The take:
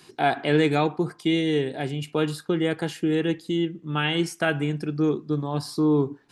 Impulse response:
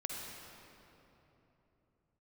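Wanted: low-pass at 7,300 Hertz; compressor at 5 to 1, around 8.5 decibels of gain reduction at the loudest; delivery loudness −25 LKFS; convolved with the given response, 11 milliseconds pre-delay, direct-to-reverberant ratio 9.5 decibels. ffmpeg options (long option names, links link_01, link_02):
-filter_complex "[0:a]lowpass=7300,acompressor=threshold=-26dB:ratio=5,asplit=2[link_01][link_02];[1:a]atrim=start_sample=2205,adelay=11[link_03];[link_02][link_03]afir=irnorm=-1:irlink=0,volume=-10.5dB[link_04];[link_01][link_04]amix=inputs=2:normalize=0,volume=5.5dB"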